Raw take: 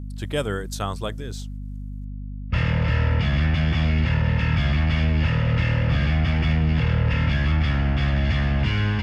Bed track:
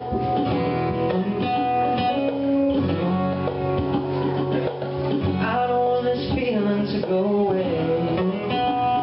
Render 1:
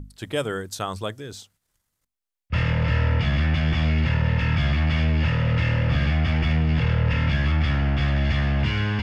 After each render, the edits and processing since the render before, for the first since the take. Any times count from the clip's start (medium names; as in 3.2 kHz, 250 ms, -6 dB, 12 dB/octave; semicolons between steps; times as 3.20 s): hum notches 50/100/150/200/250 Hz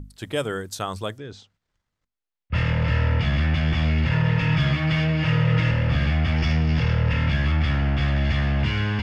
1.18–2.55 s: distance through air 150 m; 4.11–5.71 s: comb 6.4 ms, depth 77%; 6.37–7.08 s: peaking EQ 5.5 kHz +14 dB -> +5.5 dB 0.46 oct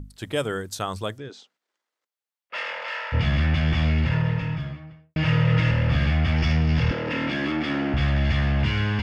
1.28–3.12 s: high-pass 250 Hz -> 710 Hz 24 dB/octave; 3.81–5.16 s: studio fade out; 6.91–7.94 s: resonant high-pass 300 Hz, resonance Q 3.6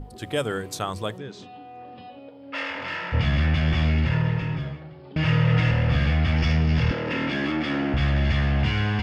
add bed track -21 dB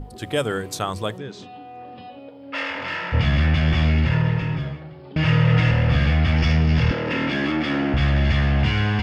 trim +3 dB